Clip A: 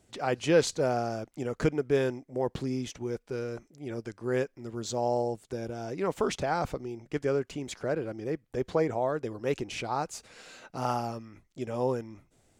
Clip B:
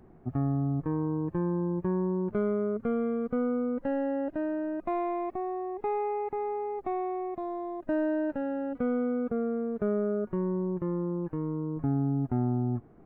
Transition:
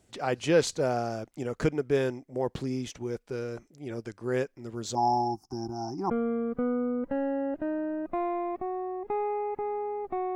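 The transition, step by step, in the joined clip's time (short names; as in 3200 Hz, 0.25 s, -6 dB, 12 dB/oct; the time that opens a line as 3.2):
clip A
4.95–6.1 EQ curve 180 Hz 0 dB, 350 Hz +5 dB, 520 Hz -29 dB, 780 Hz +13 dB, 1200 Hz -2 dB, 1800 Hz -20 dB, 3700 Hz -30 dB, 5300 Hz +11 dB, 7800 Hz -16 dB, 12000 Hz -3 dB
6.1 switch to clip B from 2.84 s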